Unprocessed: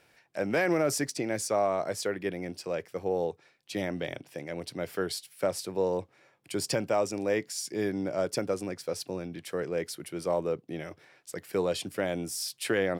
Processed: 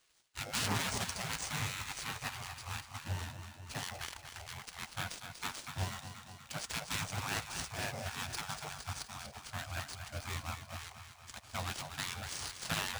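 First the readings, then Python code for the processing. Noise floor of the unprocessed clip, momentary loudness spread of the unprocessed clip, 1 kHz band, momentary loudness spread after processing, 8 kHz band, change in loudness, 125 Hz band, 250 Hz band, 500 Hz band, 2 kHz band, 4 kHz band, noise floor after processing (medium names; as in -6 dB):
-65 dBFS, 10 LU, -5.0 dB, 10 LU, -3.5 dB, -8.0 dB, -1.5 dB, -14.5 dB, -21.5 dB, -3.0 dB, -0.5 dB, -56 dBFS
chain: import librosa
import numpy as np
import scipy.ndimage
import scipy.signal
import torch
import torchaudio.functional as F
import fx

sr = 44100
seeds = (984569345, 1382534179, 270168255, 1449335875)

p1 = scipy.ndimage.median_filter(x, 25, mode='constant')
p2 = fx.peak_eq(p1, sr, hz=310.0, db=10.0, octaves=0.99)
p3 = p2 + fx.echo_feedback(p2, sr, ms=240, feedback_pct=60, wet_db=-9.0, dry=0)
p4 = fx.spec_gate(p3, sr, threshold_db=-25, keep='weak')
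p5 = scipy.signal.sosfilt(scipy.signal.butter(2, 65.0, 'highpass', fs=sr, output='sos'), p4)
p6 = fx.bass_treble(p5, sr, bass_db=14, treble_db=12)
p7 = np.repeat(p6[::3], 3)[:len(p6)]
p8 = fx.doppler_dist(p7, sr, depth_ms=0.46)
y = F.gain(torch.from_numpy(p8), 3.5).numpy()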